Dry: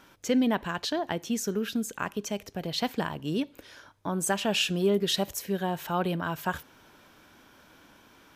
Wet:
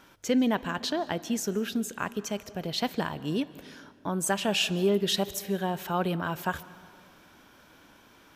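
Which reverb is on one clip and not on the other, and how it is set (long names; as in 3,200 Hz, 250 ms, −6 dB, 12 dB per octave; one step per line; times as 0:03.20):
comb and all-pass reverb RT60 2.1 s, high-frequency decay 0.6×, pre-delay 105 ms, DRR 17.5 dB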